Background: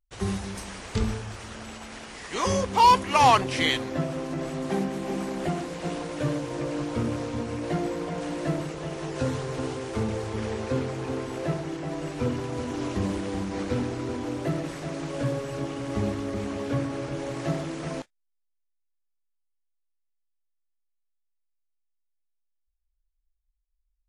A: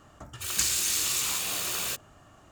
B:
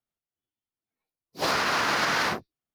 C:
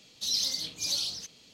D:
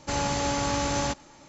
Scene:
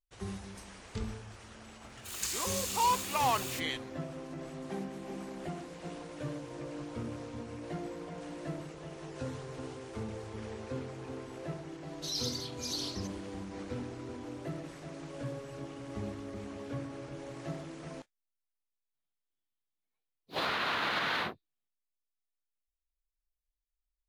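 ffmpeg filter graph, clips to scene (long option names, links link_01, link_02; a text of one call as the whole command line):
ffmpeg -i bed.wav -i cue0.wav -i cue1.wav -i cue2.wav -filter_complex "[0:a]volume=-11.5dB[link_01];[3:a]aresample=32000,aresample=44100[link_02];[2:a]highshelf=frequency=4500:width_type=q:width=3:gain=-6[link_03];[1:a]atrim=end=2.51,asetpts=PTS-STARTPTS,volume=-9.5dB,afade=type=in:duration=0.004:curve=hsin,afade=type=out:start_time=2.506:duration=0.004:curve=hsin,adelay=1640[link_04];[link_02]atrim=end=1.53,asetpts=PTS-STARTPTS,volume=-7.5dB,afade=type=in:duration=0.004:curve=hsin,afade=type=out:start_time=1.526:duration=0.004:curve=hsin,adelay=11810[link_05];[link_03]atrim=end=2.74,asetpts=PTS-STARTPTS,volume=-8dB,afade=type=in:duration=0.004:curve=hsin,afade=type=out:start_time=2.736:duration=0.004:curve=hsin,adelay=18940[link_06];[link_01][link_04][link_05][link_06]amix=inputs=4:normalize=0" out.wav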